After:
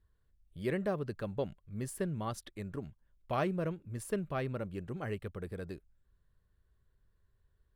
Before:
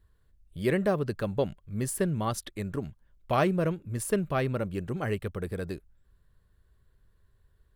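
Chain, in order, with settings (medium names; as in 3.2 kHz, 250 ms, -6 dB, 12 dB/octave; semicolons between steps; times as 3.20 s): treble shelf 6.1 kHz -5 dB; trim -7.5 dB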